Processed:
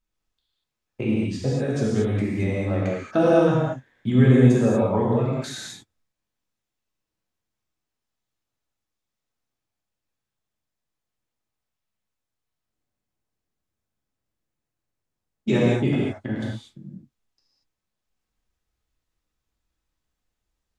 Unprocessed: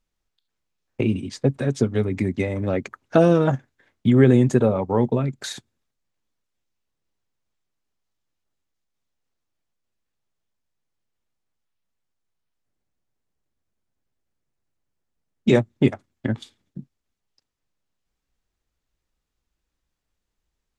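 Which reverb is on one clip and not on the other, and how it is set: non-linear reverb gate 0.26 s flat, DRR -6.5 dB; gain -7.5 dB

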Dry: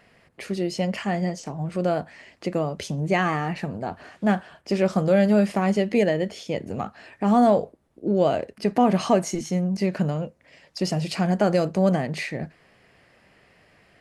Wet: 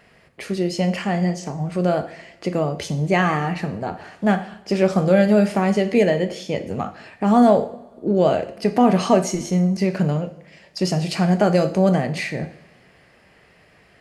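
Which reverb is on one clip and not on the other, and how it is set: two-slope reverb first 0.55 s, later 2 s, from -20 dB, DRR 8 dB; gain +3 dB

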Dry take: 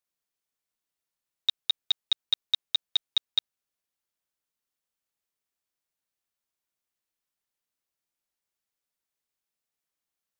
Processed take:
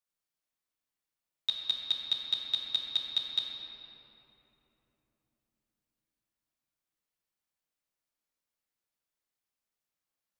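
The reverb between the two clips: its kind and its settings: shoebox room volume 200 m³, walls hard, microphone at 0.55 m; gain -5 dB

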